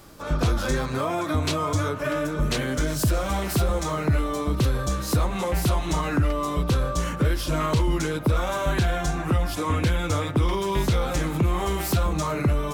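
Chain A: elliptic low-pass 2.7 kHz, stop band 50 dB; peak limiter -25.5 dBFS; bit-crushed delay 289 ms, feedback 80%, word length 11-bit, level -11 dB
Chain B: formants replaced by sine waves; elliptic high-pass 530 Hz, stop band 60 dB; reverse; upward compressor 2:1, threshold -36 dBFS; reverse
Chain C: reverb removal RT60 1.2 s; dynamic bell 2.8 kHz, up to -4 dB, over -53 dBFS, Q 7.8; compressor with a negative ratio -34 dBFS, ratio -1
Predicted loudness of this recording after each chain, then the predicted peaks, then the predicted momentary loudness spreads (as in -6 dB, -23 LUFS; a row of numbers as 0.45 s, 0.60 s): -32.5 LUFS, -25.5 LUFS, -32.5 LUFS; -21.0 dBFS, -10.0 dBFS, -15.5 dBFS; 1 LU, 8 LU, 4 LU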